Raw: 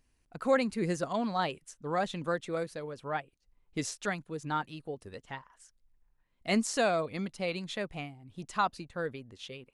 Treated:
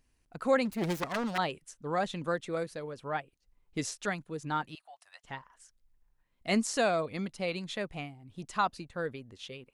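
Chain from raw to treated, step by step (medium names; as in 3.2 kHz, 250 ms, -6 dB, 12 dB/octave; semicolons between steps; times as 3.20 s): 0.65–1.38 s: self-modulated delay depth 0.53 ms; 4.75–5.24 s: elliptic high-pass 690 Hz, stop band 40 dB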